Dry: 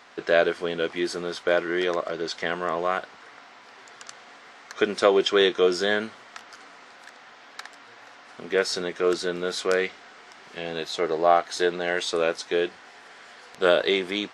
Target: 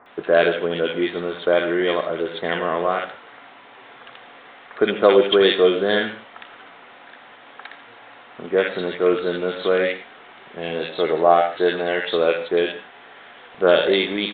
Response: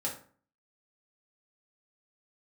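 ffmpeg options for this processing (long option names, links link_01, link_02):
-filter_complex "[0:a]aresample=8000,aresample=44100,acrossover=split=1500[link_01][link_02];[link_02]adelay=60[link_03];[link_01][link_03]amix=inputs=2:normalize=0,asplit=2[link_04][link_05];[1:a]atrim=start_sample=2205,atrim=end_sample=3969,adelay=82[link_06];[link_05][link_06]afir=irnorm=-1:irlink=0,volume=-13.5dB[link_07];[link_04][link_07]amix=inputs=2:normalize=0,volume=5dB"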